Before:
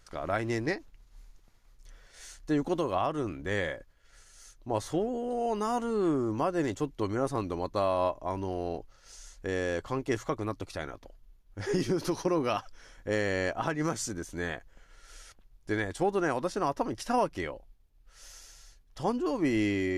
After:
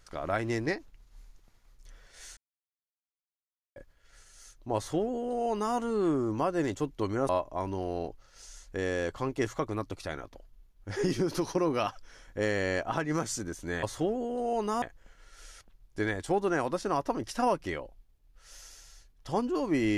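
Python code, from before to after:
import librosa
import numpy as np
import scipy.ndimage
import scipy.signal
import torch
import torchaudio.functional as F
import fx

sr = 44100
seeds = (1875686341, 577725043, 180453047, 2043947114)

y = fx.edit(x, sr, fx.silence(start_s=2.37, length_s=1.39),
    fx.duplicate(start_s=4.76, length_s=0.99, to_s=14.53),
    fx.cut(start_s=7.29, length_s=0.7), tone=tone)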